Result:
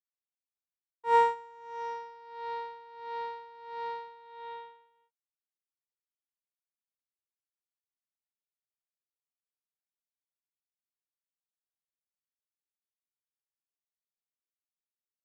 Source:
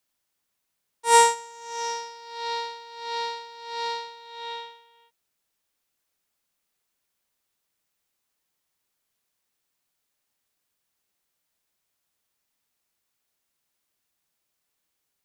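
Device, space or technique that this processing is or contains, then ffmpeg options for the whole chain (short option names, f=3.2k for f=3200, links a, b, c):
hearing-loss simulation: -af "lowpass=1.6k,agate=range=-33dB:threshold=-55dB:ratio=3:detection=peak,volume=-5.5dB"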